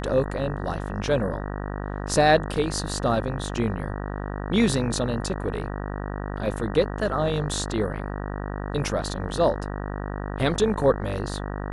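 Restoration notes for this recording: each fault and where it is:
buzz 50 Hz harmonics 38 -31 dBFS

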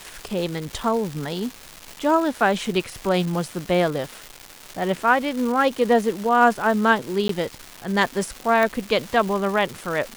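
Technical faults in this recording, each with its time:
crackle 590 per s -28 dBFS
7.28–7.29 s: dropout
8.63 s: pop

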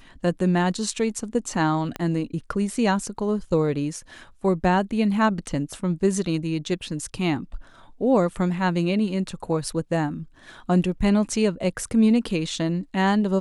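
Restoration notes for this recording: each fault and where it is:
1.96 s: pop -15 dBFS

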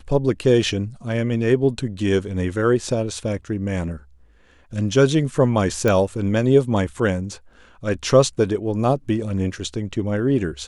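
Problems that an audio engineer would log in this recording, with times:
5.88 s: pop -8 dBFS

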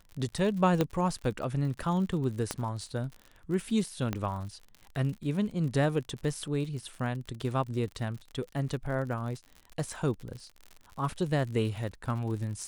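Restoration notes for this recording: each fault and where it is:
crackle 62 per s -38 dBFS
0.81 s: pop -13 dBFS
2.51 s: pop -15 dBFS
4.13 s: pop -17 dBFS

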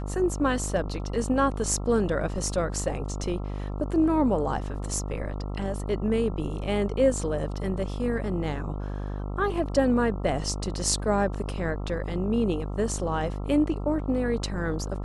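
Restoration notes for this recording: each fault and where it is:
buzz 50 Hz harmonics 27 -32 dBFS

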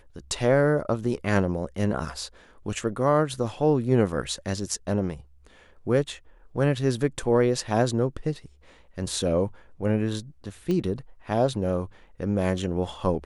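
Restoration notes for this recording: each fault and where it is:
10.71 s: pop -17 dBFS

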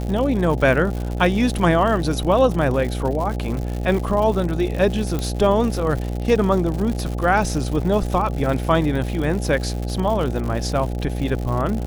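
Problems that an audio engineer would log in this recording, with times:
buzz 60 Hz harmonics 14 -25 dBFS
crackle 140 per s -26 dBFS
5.19 s: pop -11 dBFS

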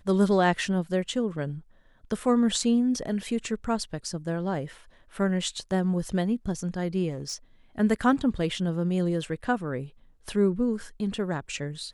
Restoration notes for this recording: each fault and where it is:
7.09–7.34 s: clipped -28.5 dBFS

